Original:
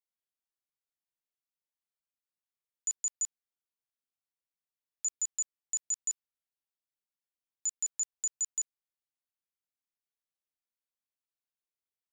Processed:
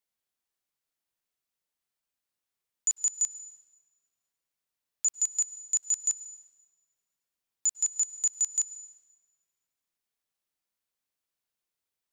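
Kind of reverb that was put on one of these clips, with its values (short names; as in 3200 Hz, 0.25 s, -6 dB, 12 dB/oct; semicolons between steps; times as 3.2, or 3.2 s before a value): plate-style reverb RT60 1.3 s, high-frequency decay 0.9×, pre-delay 90 ms, DRR 15.5 dB; gain +6 dB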